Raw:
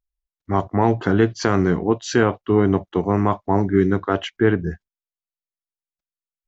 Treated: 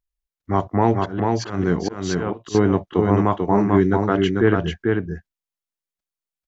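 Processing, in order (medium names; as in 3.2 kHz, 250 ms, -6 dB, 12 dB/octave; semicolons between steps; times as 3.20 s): 0.97–2.55 s: slow attack 284 ms; delay 442 ms -3.5 dB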